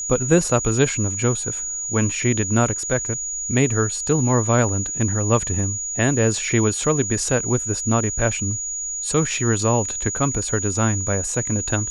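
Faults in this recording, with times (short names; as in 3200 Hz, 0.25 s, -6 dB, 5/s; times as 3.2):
tone 6800 Hz -25 dBFS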